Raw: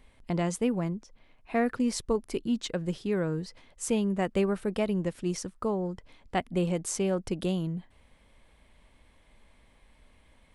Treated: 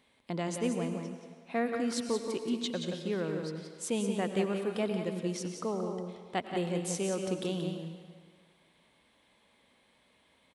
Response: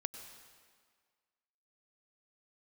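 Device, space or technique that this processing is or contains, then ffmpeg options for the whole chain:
PA in a hall: -filter_complex "[0:a]highpass=170,equalizer=frequency=3700:width_type=o:width=0.52:gain=6,aecho=1:1:178:0.447[link_01];[1:a]atrim=start_sample=2205[link_02];[link_01][link_02]afir=irnorm=-1:irlink=0,volume=-2.5dB"

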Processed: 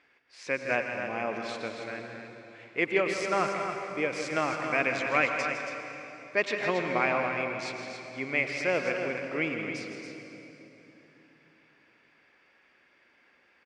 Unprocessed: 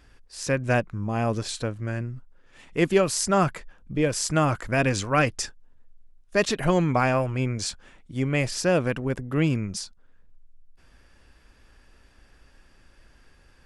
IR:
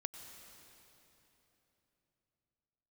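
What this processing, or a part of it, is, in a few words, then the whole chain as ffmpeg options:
station announcement: -filter_complex "[0:a]highpass=340,lowpass=3800,equalizer=frequency=2200:width_type=o:width=0.34:gain=12,aecho=1:1:160.3|277:0.316|0.398[link_01];[1:a]atrim=start_sample=2205[link_02];[link_01][link_02]afir=irnorm=-1:irlink=0,volume=-2.5dB"

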